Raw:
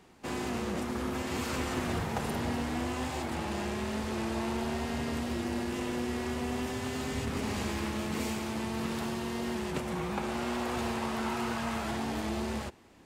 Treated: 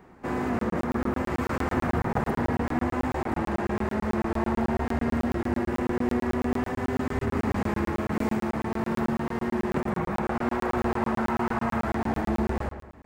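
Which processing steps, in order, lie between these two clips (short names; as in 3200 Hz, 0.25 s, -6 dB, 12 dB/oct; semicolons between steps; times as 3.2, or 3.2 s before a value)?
band shelf 5900 Hz -14.5 dB 2.6 oct; on a send: darkening echo 0.115 s, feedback 41%, low-pass 2400 Hz, level -8.5 dB; on the sum: crackling interface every 0.11 s, samples 1024, zero, from 0.59; gain +6.5 dB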